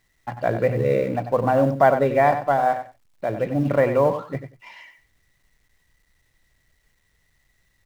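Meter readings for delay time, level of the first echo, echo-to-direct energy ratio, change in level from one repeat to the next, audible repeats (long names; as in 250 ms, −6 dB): 93 ms, −10.0 dB, −10.0 dB, −16.0 dB, 2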